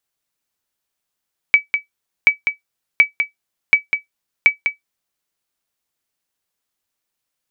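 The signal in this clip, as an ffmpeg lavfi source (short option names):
-f lavfi -i "aevalsrc='0.891*(sin(2*PI*2290*mod(t,0.73))*exp(-6.91*mod(t,0.73)/0.13)+0.422*sin(2*PI*2290*max(mod(t,0.73)-0.2,0))*exp(-6.91*max(mod(t,0.73)-0.2,0)/0.13))':d=3.65:s=44100"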